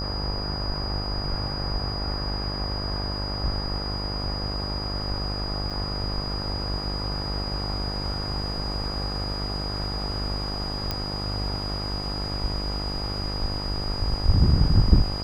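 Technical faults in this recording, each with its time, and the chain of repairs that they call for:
buzz 50 Hz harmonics 27 -31 dBFS
whine 4.9 kHz -32 dBFS
5.70–5.71 s: dropout 5.9 ms
10.91 s: pop -13 dBFS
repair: de-click; band-stop 4.9 kHz, Q 30; de-hum 50 Hz, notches 27; interpolate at 5.70 s, 5.9 ms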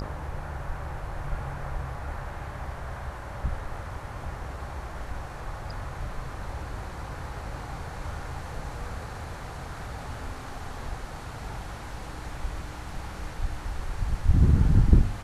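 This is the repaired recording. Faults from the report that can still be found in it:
nothing left

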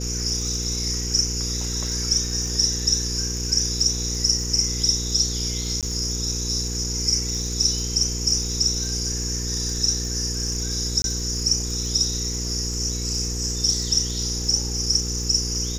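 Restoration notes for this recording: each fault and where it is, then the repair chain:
crackle 29 per s -29 dBFS
hum 60 Hz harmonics 8 -29 dBFS
5.81–5.83 s: dropout 17 ms
11.02–11.04 s: dropout 22 ms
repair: de-click; de-hum 60 Hz, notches 8; interpolate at 5.81 s, 17 ms; interpolate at 11.02 s, 22 ms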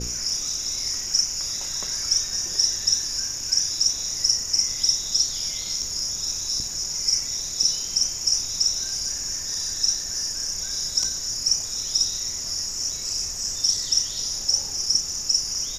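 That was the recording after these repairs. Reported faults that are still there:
nothing left

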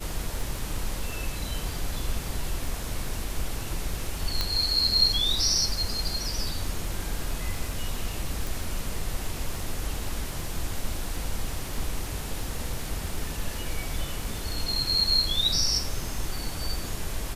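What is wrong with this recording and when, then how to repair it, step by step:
crackle 22 per s -34 dBFS
4.41 s: pop -10 dBFS
8.47 s: pop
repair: de-click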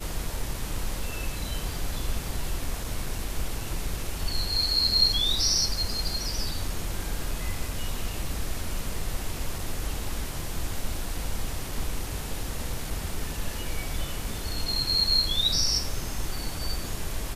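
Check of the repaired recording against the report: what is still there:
4.41 s: pop

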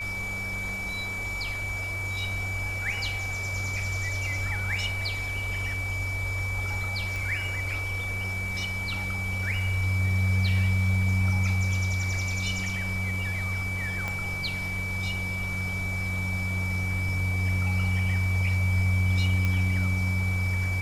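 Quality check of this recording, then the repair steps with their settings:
whine 2.3 kHz -31 dBFS
7.16 s: pop
14.08 s: pop -17 dBFS
19.45 s: pop -15 dBFS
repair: de-click; band-stop 2.3 kHz, Q 30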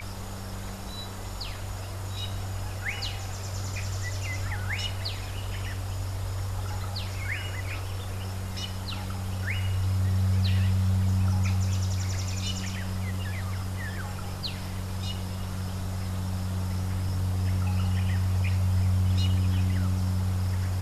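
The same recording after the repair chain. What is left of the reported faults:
7.16 s: pop
14.08 s: pop

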